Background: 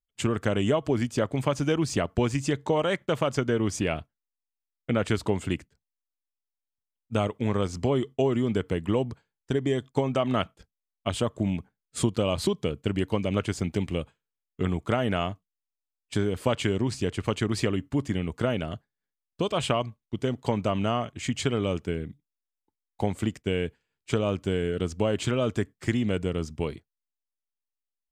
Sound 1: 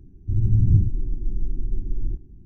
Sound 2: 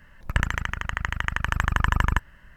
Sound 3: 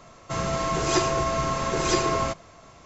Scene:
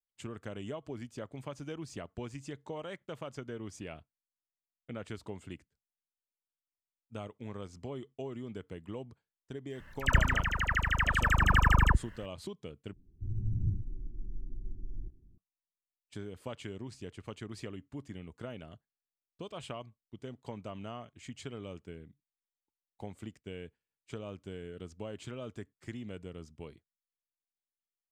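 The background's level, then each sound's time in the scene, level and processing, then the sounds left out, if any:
background −16.5 dB
0:09.70: mix in 2 −1 dB + all-pass dispersion lows, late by 86 ms, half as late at 1,100 Hz
0:12.93: overwrite with 1 −15 dB
not used: 3

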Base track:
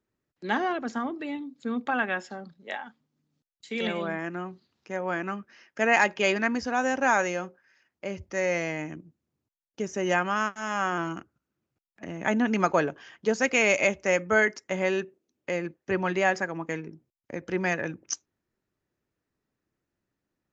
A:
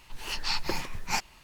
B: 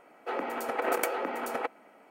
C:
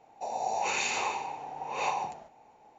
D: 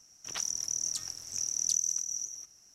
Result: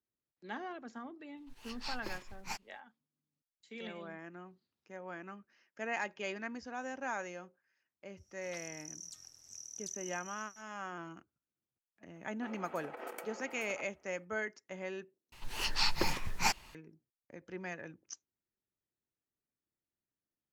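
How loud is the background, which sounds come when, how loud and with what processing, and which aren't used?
base track −15.5 dB
0:01.37: mix in A −11.5 dB + expander for the loud parts, over −48 dBFS
0:08.17: mix in D −15.5 dB
0:12.15: mix in B −16.5 dB
0:15.32: overwrite with A −1 dB
not used: C

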